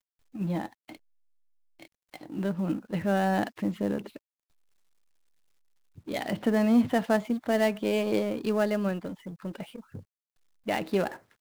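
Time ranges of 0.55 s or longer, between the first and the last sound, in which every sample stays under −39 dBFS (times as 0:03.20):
0:00.95–0:01.82
0:04.17–0:05.98
0:10.00–0:10.67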